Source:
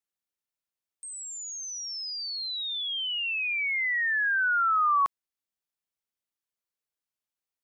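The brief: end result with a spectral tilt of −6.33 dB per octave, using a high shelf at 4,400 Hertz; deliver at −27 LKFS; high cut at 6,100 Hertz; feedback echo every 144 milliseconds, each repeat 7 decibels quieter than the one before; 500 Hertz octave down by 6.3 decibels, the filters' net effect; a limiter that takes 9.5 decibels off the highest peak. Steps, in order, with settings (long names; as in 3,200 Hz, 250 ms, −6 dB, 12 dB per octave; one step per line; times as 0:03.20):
low-pass filter 6,100 Hz
parametric band 500 Hz −8.5 dB
high-shelf EQ 4,400 Hz −7.5 dB
brickwall limiter −30.5 dBFS
repeating echo 144 ms, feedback 45%, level −7 dB
level +5 dB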